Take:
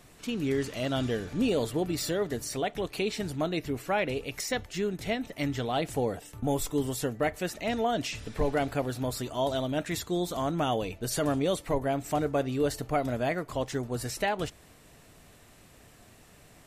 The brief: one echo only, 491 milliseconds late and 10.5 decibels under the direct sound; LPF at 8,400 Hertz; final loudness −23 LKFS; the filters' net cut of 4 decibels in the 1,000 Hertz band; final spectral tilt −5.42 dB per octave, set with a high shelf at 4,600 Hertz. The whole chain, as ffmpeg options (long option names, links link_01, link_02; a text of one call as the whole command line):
ffmpeg -i in.wav -af "lowpass=8400,equalizer=frequency=1000:width_type=o:gain=-6,highshelf=frequency=4600:gain=-7,aecho=1:1:491:0.299,volume=9dB" out.wav